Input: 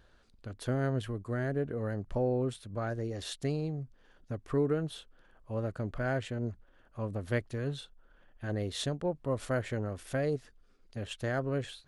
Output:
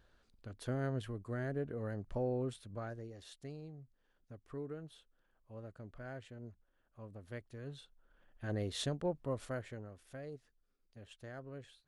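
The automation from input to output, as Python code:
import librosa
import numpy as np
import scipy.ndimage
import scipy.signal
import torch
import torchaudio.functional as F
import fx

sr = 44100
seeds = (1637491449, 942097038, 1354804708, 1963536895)

y = fx.gain(x, sr, db=fx.line((2.69, -6.0), (3.21, -15.0), (7.36, -15.0), (8.52, -3.5), (9.16, -3.5), (9.98, -16.0)))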